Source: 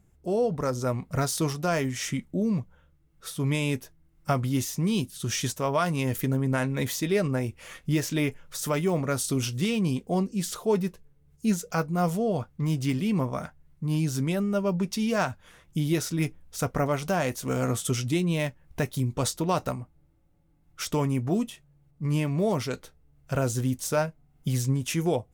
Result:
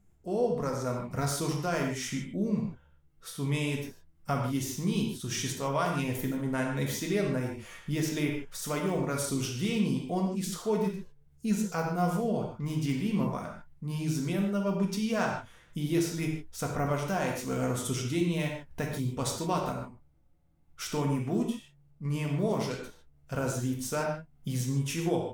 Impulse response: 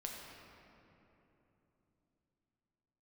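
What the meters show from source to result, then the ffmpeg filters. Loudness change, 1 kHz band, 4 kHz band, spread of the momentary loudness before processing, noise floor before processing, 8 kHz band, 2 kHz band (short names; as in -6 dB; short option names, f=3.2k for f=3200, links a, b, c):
-3.5 dB, -2.5 dB, -3.5 dB, 7 LU, -63 dBFS, -4.0 dB, -3.0 dB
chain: -filter_complex "[1:a]atrim=start_sample=2205,afade=t=out:st=0.29:d=0.01,atrim=end_sample=13230,asetrate=66150,aresample=44100[a];[0:a][a]afir=irnorm=-1:irlink=0,volume=2.5dB"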